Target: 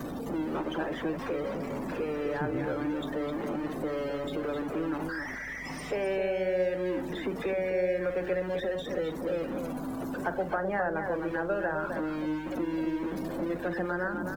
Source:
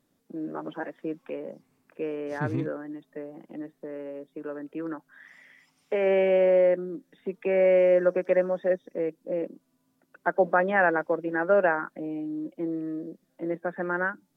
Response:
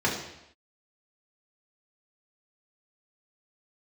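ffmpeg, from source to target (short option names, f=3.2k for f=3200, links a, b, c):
-filter_complex "[0:a]aeval=exprs='val(0)+0.5*0.0398*sgn(val(0))':c=same,acrossover=split=160|1200[a][b][c];[a]acompressor=threshold=-48dB:ratio=4[d];[b]acompressor=threshold=-31dB:ratio=4[e];[c]acompressor=threshold=-39dB:ratio=4[f];[d][e][f]amix=inputs=3:normalize=0,aeval=exprs='val(0)+0.00178*(sin(2*PI*50*n/s)+sin(2*PI*2*50*n/s)/2+sin(2*PI*3*50*n/s)/3+sin(2*PI*4*50*n/s)/4+sin(2*PI*5*50*n/s)/5)':c=same,asplit=2[g][h];[h]aecho=0:1:43.73|259.5:0.251|0.501[i];[g][i]amix=inputs=2:normalize=0,afftdn=nr=19:nf=-42"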